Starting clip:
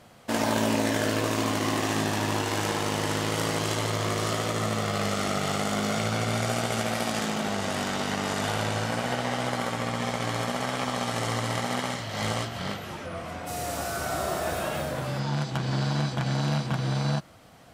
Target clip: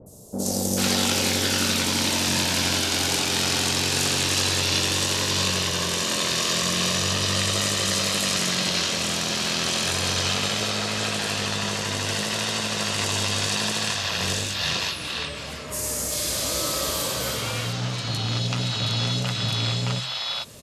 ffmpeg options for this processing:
ffmpeg -i in.wav -filter_complex "[0:a]acompressor=mode=upward:threshold=-36dB:ratio=2.5,bass=frequency=250:gain=1,treble=frequency=4000:gain=12,bandreject=frequency=50:width_type=h:width=6,bandreject=frequency=100:width_type=h:width=6,bandreject=frequency=150:width_type=h:width=6,bandreject=frequency=200:width_type=h:width=6,adynamicequalizer=threshold=0.00708:dfrequency=4400:dqfactor=0.77:tfrequency=4400:tqfactor=0.77:attack=5:release=100:ratio=0.375:range=3.5:mode=boostabove:tftype=bell,asetrate=37926,aresample=44100,acrossover=split=680|5800[link_01][link_02][link_03];[link_03]adelay=60[link_04];[link_02]adelay=440[link_05];[link_01][link_05][link_04]amix=inputs=3:normalize=0" out.wav

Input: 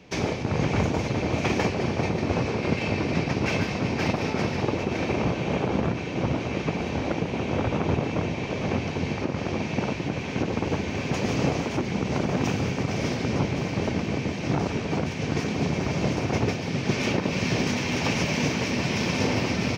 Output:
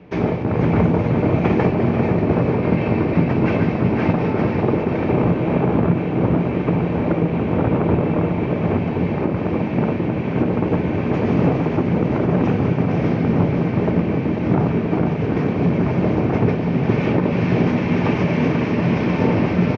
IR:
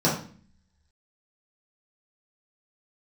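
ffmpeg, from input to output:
-filter_complex "[0:a]lowpass=1700,aecho=1:1:492:0.398,asplit=2[link_01][link_02];[1:a]atrim=start_sample=2205,lowpass=frequency=1100:width=0.5412,lowpass=frequency=1100:width=1.3066[link_03];[link_02][link_03]afir=irnorm=-1:irlink=0,volume=-26dB[link_04];[link_01][link_04]amix=inputs=2:normalize=0,volume=5.5dB"

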